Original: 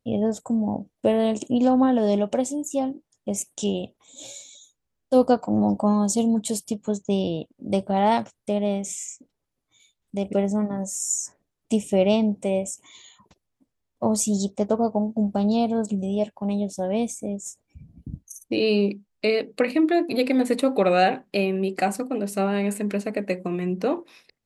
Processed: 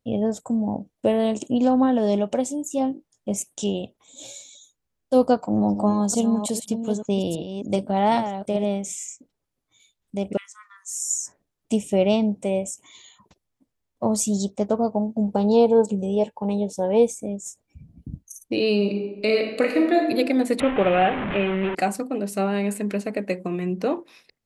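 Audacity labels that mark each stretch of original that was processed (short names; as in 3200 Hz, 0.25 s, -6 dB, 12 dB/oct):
2.760000	3.340000	doubler 19 ms -7.5 dB
5.340000	8.750000	reverse delay 0.403 s, level -9 dB
10.370000	11.200000	steep high-pass 1100 Hz 96 dB/oct
15.280000	17.200000	small resonant body resonances 470/880 Hz, height 14 dB, ringing for 55 ms
18.760000	20.080000	reverb throw, RT60 1.1 s, DRR 2.5 dB
20.600000	21.750000	delta modulation 16 kbps, step -21 dBFS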